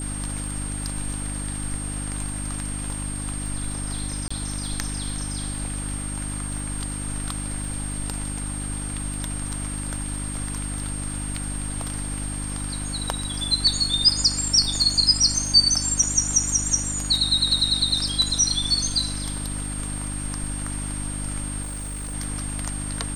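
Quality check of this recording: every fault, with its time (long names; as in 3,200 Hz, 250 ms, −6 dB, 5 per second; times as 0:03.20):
surface crackle 13 per second −32 dBFS
mains hum 50 Hz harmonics 6 −31 dBFS
whistle 8,600 Hz −32 dBFS
0:04.28–0:04.30: drop-out 25 ms
0:21.62–0:22.15: clipping −28 dBFS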